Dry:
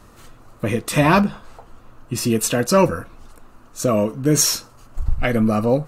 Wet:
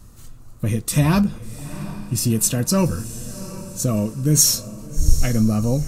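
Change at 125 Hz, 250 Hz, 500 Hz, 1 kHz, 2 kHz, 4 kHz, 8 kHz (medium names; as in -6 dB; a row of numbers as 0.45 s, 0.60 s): +4.0 dB, -0.5 dB, -8.0 dB, -9.0 dB, -8.0 dB, 0.0 dB, +3.0 dB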